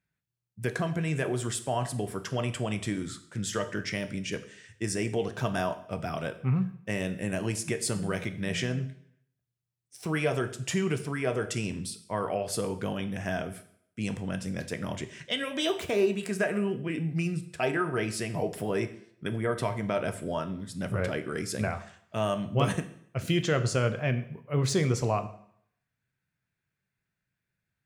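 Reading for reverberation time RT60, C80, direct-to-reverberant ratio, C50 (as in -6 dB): 0.65 s, 16.5 dB, 9.0 dB, 14.0 dB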